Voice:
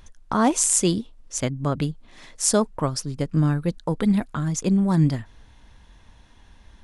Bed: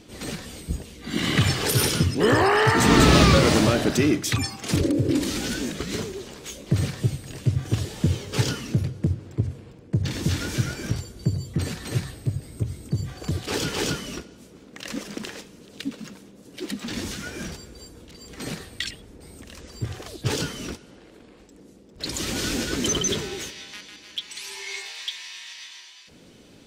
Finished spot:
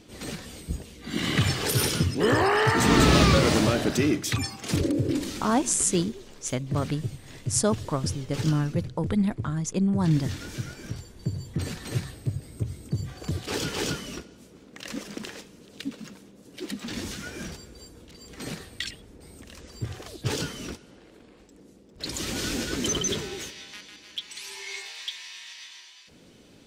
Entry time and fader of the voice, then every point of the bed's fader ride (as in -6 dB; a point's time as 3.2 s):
5.10 s, -4.0 dB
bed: 5.04 s -3 dB
5.44 s -9 dB
10.85 s -9 dB
11.72 s -3 dB